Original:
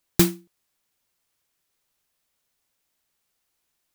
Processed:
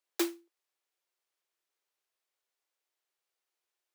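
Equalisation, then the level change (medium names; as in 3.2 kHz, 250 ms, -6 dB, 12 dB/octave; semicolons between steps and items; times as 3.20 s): steep high-pass 320 Hz 96 dB/octave; treble shelf 6.9 kHz -7.5 dB; -8.5 dB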